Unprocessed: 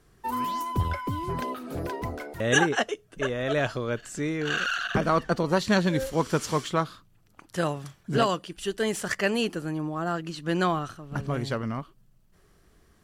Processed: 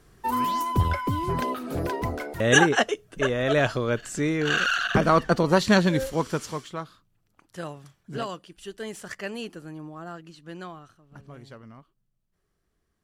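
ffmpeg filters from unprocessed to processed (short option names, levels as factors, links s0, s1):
-af "volume=1.58,afade=t=out:st=5.7:d=0.94:silence=0.237137,afade=t=out:st=9.89:d=0.84:silence=0.446684"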